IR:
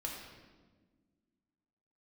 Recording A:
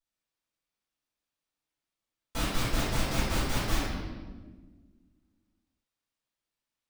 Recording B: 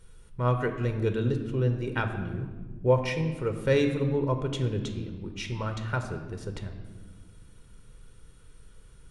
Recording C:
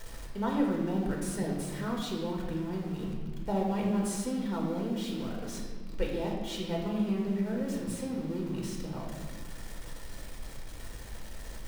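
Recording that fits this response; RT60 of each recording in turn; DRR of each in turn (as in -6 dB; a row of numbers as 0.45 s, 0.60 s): C; 1.4 s, 1.5 s, 1.4 s; -11.5 dB, 6.0 dB, -2.0 dB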